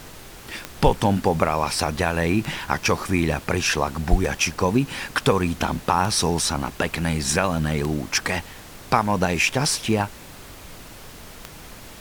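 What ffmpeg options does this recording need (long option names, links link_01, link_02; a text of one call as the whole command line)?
ffmpeg -i in.wav -af "adeclick=threshold=4,afftdn=noise_reduction=27:noise_floor=-41" out.wav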